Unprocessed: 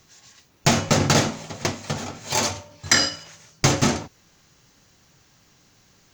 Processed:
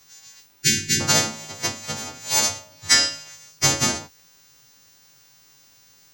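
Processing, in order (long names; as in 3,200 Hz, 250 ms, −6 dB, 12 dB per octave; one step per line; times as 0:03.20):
every partial snapped to a pitch grid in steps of 2 semitones
surface crackle 120 per second −42 dBFS
healed spectral selection 0:00.60–0:00.98, 430–1,400 Hz before
level −4 dB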